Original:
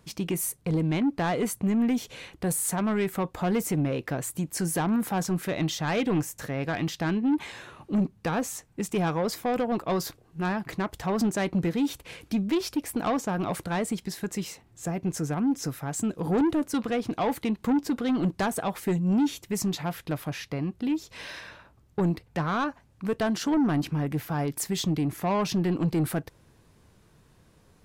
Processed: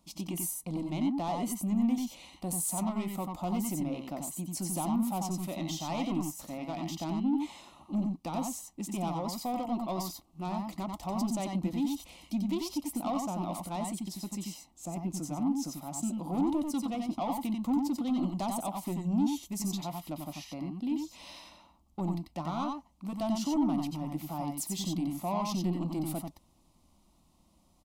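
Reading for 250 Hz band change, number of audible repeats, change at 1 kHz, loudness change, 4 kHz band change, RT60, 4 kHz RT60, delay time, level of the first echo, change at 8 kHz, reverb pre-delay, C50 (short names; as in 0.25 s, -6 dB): -4.5 dB, 1, -4.0 dB, -5.5 dB, -5.5 dB, none, none, 91 ms, -3.5 dB, -4.0 dB, none, none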